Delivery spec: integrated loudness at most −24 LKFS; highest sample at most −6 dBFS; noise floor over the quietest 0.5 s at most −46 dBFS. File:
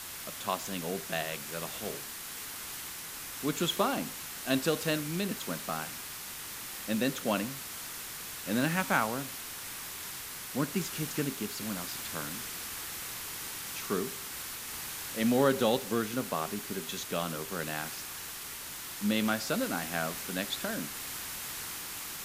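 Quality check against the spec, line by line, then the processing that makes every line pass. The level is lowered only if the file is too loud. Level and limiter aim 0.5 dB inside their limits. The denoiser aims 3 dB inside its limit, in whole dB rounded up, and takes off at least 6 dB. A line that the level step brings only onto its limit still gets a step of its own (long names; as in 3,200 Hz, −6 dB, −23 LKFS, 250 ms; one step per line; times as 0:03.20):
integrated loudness −33.5 LKFS: in spec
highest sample −11.5 dBFS: in spec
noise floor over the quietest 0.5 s −42 dBFS: out of spec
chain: broadband denoise 7 dB, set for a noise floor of −42 dBFS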